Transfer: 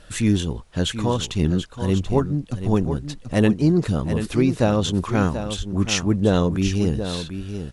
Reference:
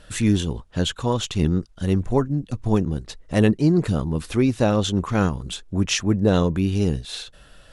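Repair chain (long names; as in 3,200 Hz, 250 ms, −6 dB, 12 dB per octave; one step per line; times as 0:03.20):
0:05.57–0:05.69: high-pass filter 140 Hz 24 dB per octave
0:06.64–0:06.76: high-pass filter 140 Hz 24 dB per octave
downward expander −28 dBFS, range −21 dB
echo removal 734 ms −9.5 dB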